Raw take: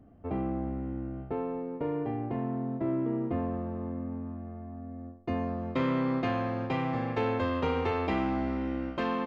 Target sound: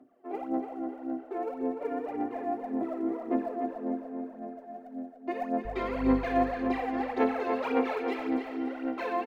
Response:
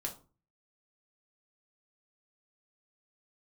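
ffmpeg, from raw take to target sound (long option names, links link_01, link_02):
-filter_complex "[0:a]highpass=frequency=290:width=0.5412,highpass=frequency=290:width=1.3066[link_01];[1:a]atrim=start_sample=2205,atrim=end_sample=3969[link_02];[link_01][link_02]afir=irnorm=-1:irlink=0,asettb=1/sr,asplit=3[link_03][link_04][link_05];[link_03]atrim=end=5.654[link_06];[link_04]atrim=start=5.65:end=6.28,asetpts=PTS-STARTPTS,afade=type=in:duration=0.004:curve=qsin,afade=type=out:start_time=0.626:duration=0.004:curve=qsin,aeval=exprs='val(0)+0.0112*(sin(2*PI*50*n/s)+sin(2*PI*2*50*n/s)/2+sin(2*PI*3*50*n/s)/3+sin(2*PI*4*50*n/s)/4+sin(2*PI*5*50*n/s)/5)':channel_layout=same[link_07];[link_05]atrim=start=6.276[link_08];[link_06][link_07]acrossfade=duration=0.004:curve1=hsin:curve2=qsin[link_09];[link_09][link_08]acrossfade=duration=0.004:curve1=qsin:curve2=hsin,aphaser=in_gain=1:out_gain=1:delay=2.9:decay=0.74:speed=1.8:type=sinusoidal,asettb=1/sr,asplit=3[link_10][link_11][link_12];[link_10]atrim=end=7.944[link_13];[link_11]atrim=start=7.94:end=8.67,asetpts=PTS-STARTPTS,afade=type=in:duration=0.004:curve=qsin,afade=type=out:start_time=0.726:duration=0.004:curve=qsin,equalizer=frequency=900:width_type=o:width=1.5:gain=-11[link_14];[link_12]atrim=start=8.666[link_15];[link_13][link_14]acrossfade=duration=0.004:curve1=hsin:curve2=qsin[link_16];[link_16][link_15]acrossfade=duration=0.004:curve1=qsin:curve2=hsin,asplit=2[link_17][link_18];[link_18]adelay=293,lowpass=frequency=4200:poles=1,volume=-6dB,asplit=2[link_19][link_20];[link_20]adelay=293,lowpass=frequency=4200:poles=1,volume=0.46,asplit=2[link_21][link_22];[link_22]adelay=293,lowpass=frequency=4200:poles=1,volume=0.46,asplit=2[link_23][link_24];[link_24]adelay=293,lowpass=frequency=4200:poles=1,volume=0.46,asplit=2[link_25][link_26];[link_26]adelay=293,lowpass=frequency=4200:poles=1,volume=0.46,asplit=2[link_27][link_28];[link_28]adelay=293,lowpass=frequency=4200:poles=1,volume=0.46[link_29];[link_17][link_19][link_21][link_23][link_25][link_27][link_29]amix=inputs=7:normalize=0,volume=-5dB"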